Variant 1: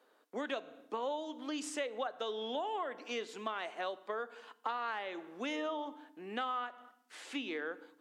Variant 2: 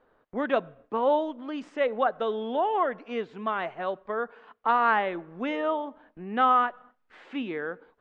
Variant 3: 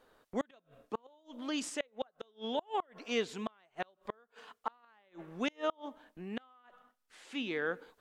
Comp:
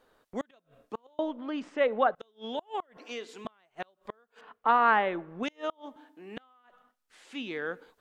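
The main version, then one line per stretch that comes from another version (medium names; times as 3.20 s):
3
1.19–2.15 s: from 2
2.97–3.45 s: from 1
4.41–5.43 s: from 2
5.96–6.37 s: from 1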